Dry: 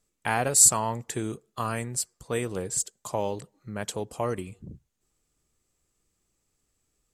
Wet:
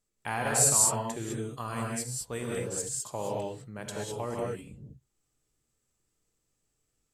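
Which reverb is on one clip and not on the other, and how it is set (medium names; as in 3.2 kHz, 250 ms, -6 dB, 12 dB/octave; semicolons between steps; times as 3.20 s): gated-style reverb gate 230 ms rising, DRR -2.5 dB; trim -7.5 dB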